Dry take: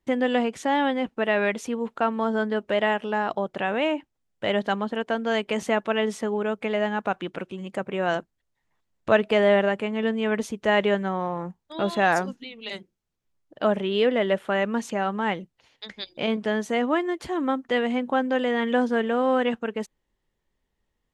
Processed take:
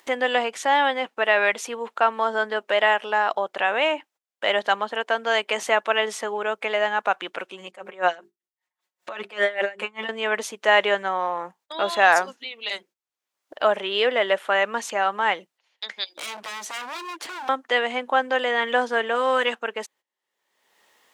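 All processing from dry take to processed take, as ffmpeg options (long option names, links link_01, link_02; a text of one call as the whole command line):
ffmpeg -i in.wav -filter_complex "[0:a]asettb=1/sr,asplit=3[link_01][link_02][link_03];[link_01]atrim=end=7.674[link_04];[link_02]atrim=start=7.67:end=10.09,asetpts=PTS-STARTPTS,afade=type=in:duration=0.004:curve=qsin,afade=type=out:start_time=2.416:duration=0.004:curve=qsin,bandreject=frequency=50:width_type=h:width=6,bandreject=frequency=100:width_type=h:width=6,bandreject=frequency=150:width_type=h:width=6,bandreject=frequency=200:width_type=h:width=6,bandreject=frequency=250:width_type=h:width=6,bandreject=frequency=300:width_type=h:width=6,bandreject=frequency=350:width_type=h:width=6,bandreject=frequency=400:width_type=h:width=6,aecho=1:1:5.5:0.82,atrim=end_sample=106722,aeval=exprs='val(0)*pow(10,-22*(0.5-0.5*cos(2*PI*5.1*n/s))/20)':channel_layout=same[link_05];[link_03]atrim=start=10.086[link_06];[link_04][link_05]acrossfade=duration=0.004:curve1=hsin:curve2=qsin[link_07];[link_07][link_06]acrossfade=duration=0.004:curve1=qsin:curve2=hsin,asettb=1/sr,asplit=3[link_08][link_09][link_10];[link_08]atrim=end=16.154[link_11];[link_09]atrim=start=16.15:end=17.49,asetpts=PTS-STARTPTS,afade=type=in:duration=0.004:curve=qsin,afade=type=out:start_time=1.336:duration=0.004:curve=qsin,equalizer=frequency=310:width_type=o:width=0.34:gain=8,acrossover=split=160|3000[link_12][link_13][link_14];[link_13]acompressor=threshold=-30dB:ratio=4:attack=3.2:release=140:knee=2.83:detection=peak[link_15];[link_12][link_15][link_14]amix=inputs=3:normalize=0,aeval=exprs='0.0251*(abs(mod(val(0)/0.0251+3,4)-2)-1)':channel_layout=same[link_16];[link_10]atrim=start=17.486[link_17];[link_11][link_16]acrossfade=duration=0.004:curve1=hsin:curve2=qsin[link_18];[link_18][link_17]acrossfade=duration=0.004:curve1=qsin:curve2=hsin,asettb=1/sr,asplit=3[link_19][link_20][link_21];[link_19]atrim=end=19.154[link_22];[link_20]atrim=start=19.15:end=19.55,asetpts=PTS-STARTPTS,afade=type=in:duration=0.004:curve=qsin,afade=type=out:start_time=0.396:duration=0.004:curve=qsin,aemphasis=mode=production:type=cd,bandreject=frequency=750:width=10[link_23];[link_21]atrim=start=19.546[link_24];[link_22][link_23]acrossfade=duration=0.004:curve1=hsin:curve2=qsin[link_25];[link_25][link_24]acrossfade=duration=0.004:curve1=qsin:curve2=hsin,agate=range=-18dB:threshold=-52dB:ratio=16:detection=peak,highpass=680,acompressor=mode=upward:threshold=-40dB:ratio=2.5,volume=6.5dB" out.wav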